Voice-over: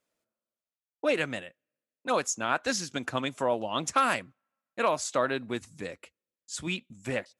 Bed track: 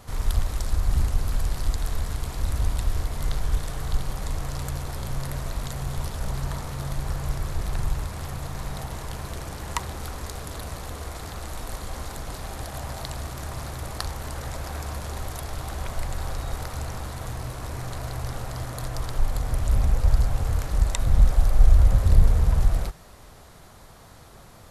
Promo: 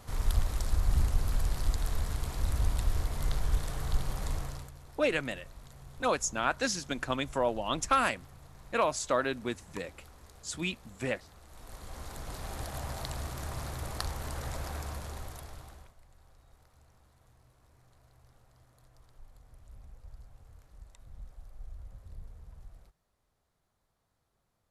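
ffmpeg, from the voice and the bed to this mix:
ffmpeg -i stem1.wav -i stem2.wav -filter_complex "[0:a]adelay=3950,volume=-1.5dB[link_01];[1:a]volume=11dB,afade=type=out:start_time=4.33:duration=0.38:silence=0.16788,afade=type=in:start_time=11.48:duration=1.09:silence=0.16788,afade=type=out:start_time=14.61:duration=1.33:silence=0.0501187[link_02];[link_01][link_02]amix=inputs=2:normalize=0" out.wav

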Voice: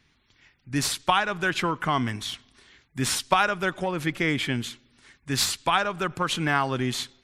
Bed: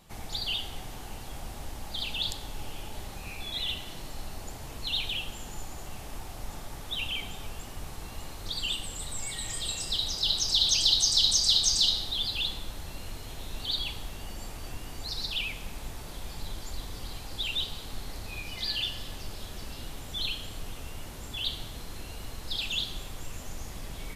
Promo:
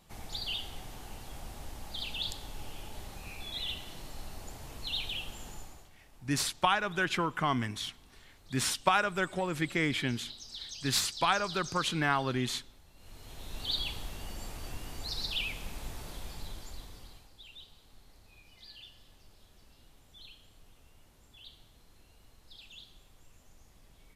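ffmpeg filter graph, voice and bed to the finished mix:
ffmpeg -i stem1.wav -i stem2.wav -filter_complex "[0:a]adelay=5550,volume=-5dB[link_01];[1:a]volume=13dB,afade=type=out:start_time=5.48:duration=0.42:silence=0.177828,afade=type=in:start_time=12.95:duration=0.76:silence=0.133352,afade=type=out:start_time=16.05:duration=1.28:silence=0.125893[link_02];[link_01][link_02]amix=inputs=2:normalize=0" out.wav

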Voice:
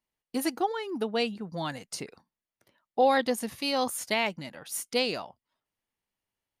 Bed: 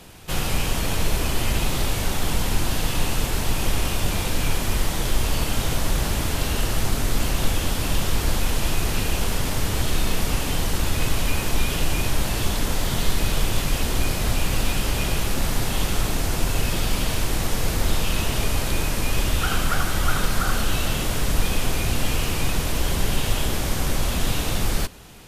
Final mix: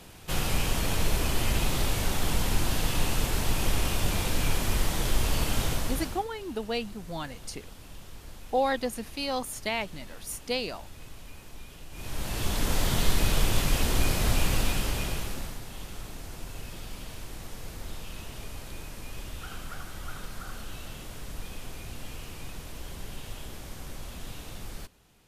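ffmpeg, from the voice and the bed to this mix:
ffmpeg -i stem1.wav -i stem2.wav -filter_complex "[0:a]adelay=5550,volume=-3dB[link_01];[1:a]volume=17dB,afade=type=out:start_time=5.62:duration=0.64:silence=0.105925,afade=type=in:start_time=11.91:duration=0.87:silence=0.0891251,afade=type=out:start_time=14.42:duration=1.18:silence=0.177828[link_02];[link_01][link_02]amix=inputs=2:normalize=0" out.wav

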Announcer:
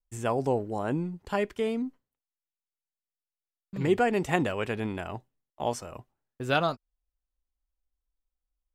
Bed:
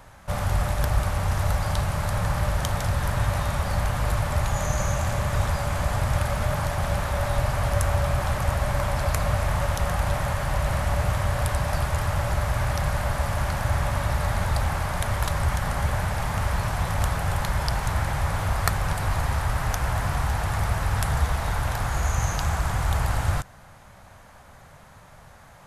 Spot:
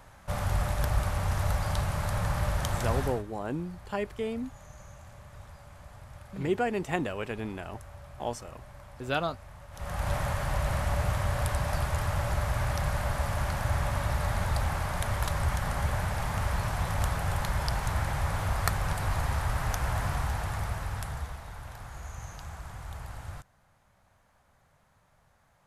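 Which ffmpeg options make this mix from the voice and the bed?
ffmpeg -i stem1.wav -i stem2.wav -filter_complex "[0:a]adelay=2600,volume=-4dB[link_01];[1:a]volume=15dB,afade=type=out:start_time=2.98:duration=0.25:silence=0.105925,afade=type=in:start_time=9.71:duration=0.42:silence=0.105925,afade=type=out:start_time=20.04:duration=1.41:silence=0.237137[link_02];[link_01][link_02]amix=inputs=2:normalize=0" out.wav

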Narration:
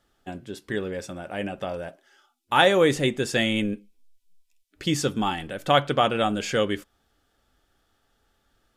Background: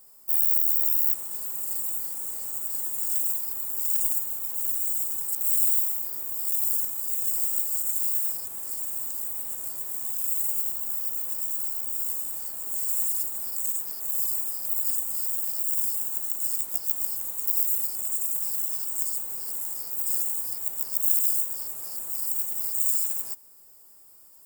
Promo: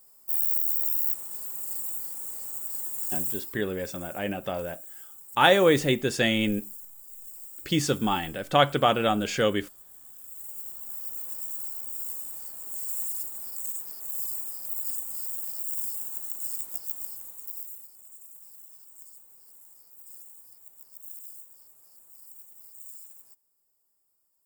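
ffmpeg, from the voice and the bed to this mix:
ffmpeg -i stem1.wav -i stem2.wav -filter_complex "[0:a]adelay=2850,volume=-0.5dB[link_01];[1:a]volume=8.5dB,afade=type=out:start_time=3.29:duration=0.32:silence=0.199526,afade=type=in:start_time=10.29:duration=0.92:silence=0.251189,afade=type=out:start_time=16.65:duration=1.22:silence=0.177828[link_02];[link_01][link_02]amix=inputs=2:normalize=0" out.wav

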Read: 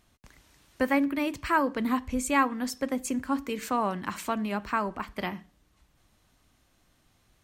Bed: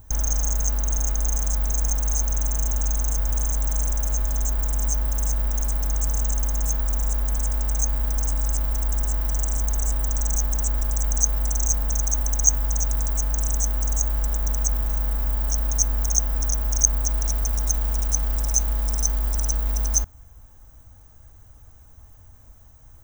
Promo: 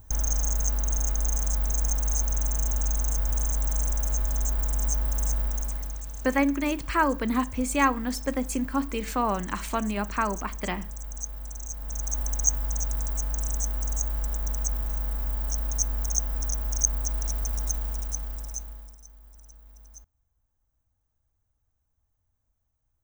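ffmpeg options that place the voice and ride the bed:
ffmpeg -i stem1.wav -i stem2.wav -filter_complex "[0:a]adelay=5450,volume=1.5dB[link_01];[1:a]volume=6dB,afade=type=out:start_time=5.35:duration=0.69:silence=0.266073,afade=type=in:start_time=11.75:duration=0.46:silence=0.354813,afade=type=out:start_time=17.63:duration=1.35:silence=0.0794328[link_02];[link_01][link_02]amix=inputs=2:normalize=0" out.wav

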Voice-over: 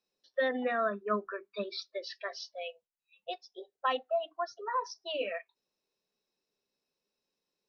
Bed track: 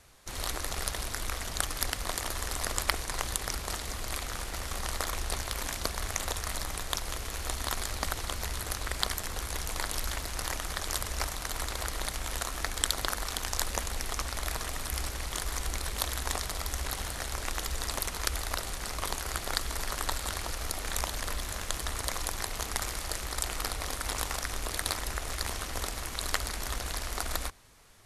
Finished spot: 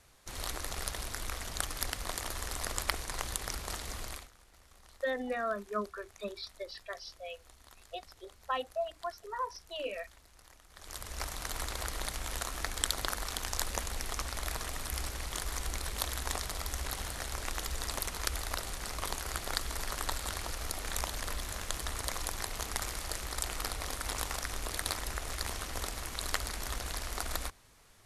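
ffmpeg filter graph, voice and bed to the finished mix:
ffmpeg -i stem1.wav -i stem2.wav -filter_complex "[0:a]adelay=4650,volume=-3.5dB[link_01];[1:a]volume=17.5dB,afade=type=out:start_time=4.02:duration=0.28:silence=0.0944061,afade=type=in:start_time=10.71:duration=0.72:silence=0.0841395[link_02];[link_01][link_02]amix=inputs=2:normalize=0" out.wav

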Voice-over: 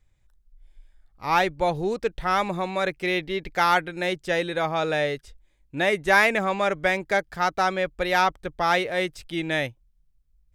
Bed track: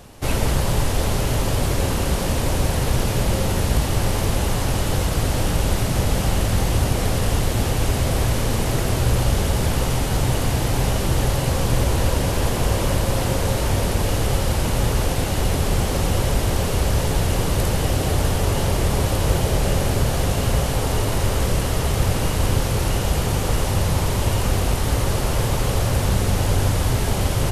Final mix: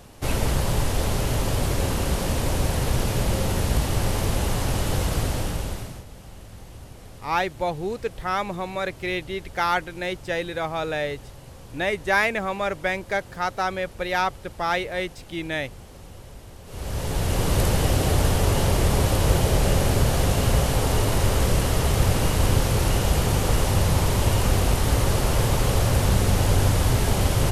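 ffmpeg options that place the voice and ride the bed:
ffmpeg -i stem1.wav -i stem2.wav -filter_complex "[0:a]adelay=6000,volume=-2.5dB[link_01];[1:a]volume=19.5dB,afade=type=out:start_time=5.15:duration=0.89:silence=0.1,afade=type=in:start_time=16.65:duration=0.92:silence=0.0749894[link_02];[link_01][link_02]amix=inputs=2:normalize=0" out.wav

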